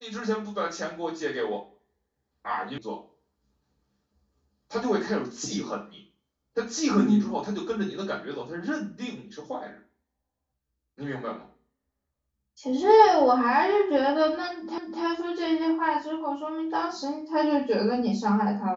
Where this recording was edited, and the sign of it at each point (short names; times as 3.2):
2.78 sound cut off
14.78 repeat of the last 0.25 s